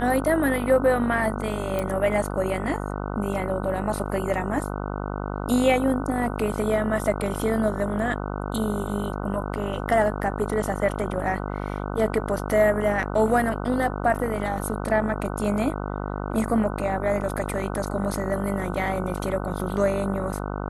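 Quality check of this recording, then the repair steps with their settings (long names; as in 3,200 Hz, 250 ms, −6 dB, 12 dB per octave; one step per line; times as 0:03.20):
mains buzz 50 Hz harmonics 30 −30 dBFS
0:01.79: click −14 dBFS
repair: click removal
hum removal 50 Hz, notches 30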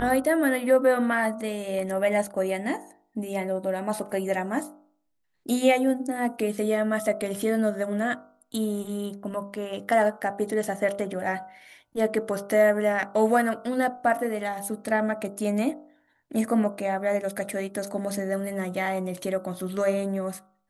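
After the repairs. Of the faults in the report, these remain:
0:01.79: click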